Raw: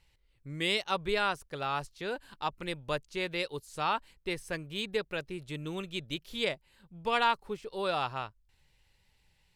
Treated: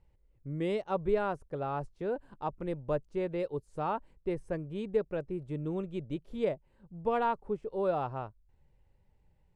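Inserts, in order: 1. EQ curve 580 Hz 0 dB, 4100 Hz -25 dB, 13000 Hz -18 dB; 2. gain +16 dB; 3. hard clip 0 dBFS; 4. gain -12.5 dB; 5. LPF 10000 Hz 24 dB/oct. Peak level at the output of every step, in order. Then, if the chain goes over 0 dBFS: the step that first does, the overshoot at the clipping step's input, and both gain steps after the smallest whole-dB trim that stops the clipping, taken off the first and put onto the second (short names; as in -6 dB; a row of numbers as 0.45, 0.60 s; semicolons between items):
-21.0, -5.0, -5.0, -17.5, -17.5 dBFS; no overload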